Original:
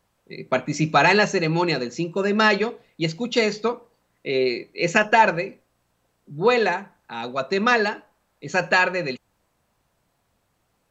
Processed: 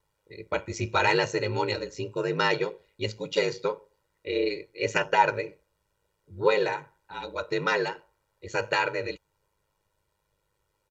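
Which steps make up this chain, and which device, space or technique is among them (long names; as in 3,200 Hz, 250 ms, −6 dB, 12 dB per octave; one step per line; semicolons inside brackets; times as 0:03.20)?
ring-modulated robot voice (ring modulation 51 Hz; comb filter 2.1 ms, depth 82%)
level −5.5 dB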